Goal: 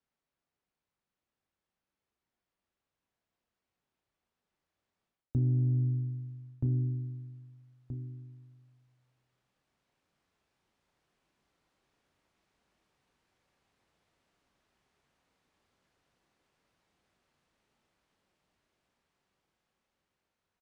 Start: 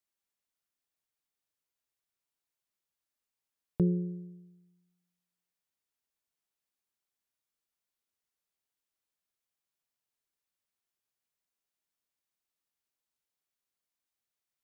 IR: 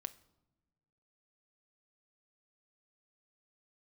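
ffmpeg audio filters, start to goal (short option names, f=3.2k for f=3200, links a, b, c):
-filter_complex "[0:a]aemphasis=mode=reproduction:type=riaa,asplit=2[a][b];[b]adelay=24,volume=-10.5dB[c];[a][c]amix=inputs=2:normalize=0,aecho=1:1:906|1812:0.2|0.0379,dynaudnorm=f=500:g=13:m=14dB,asetrate=31311,aresample=44100,areverse,acompressor=threshold=-24dB:ratio=12,areverse,highpass=f=200:p=1[d];[1:a]atrim=start_sample=2205,atrim=end_sample=3087[e];[d][e]afir=irnorm=-1:irlink=0,volume=8.5dB"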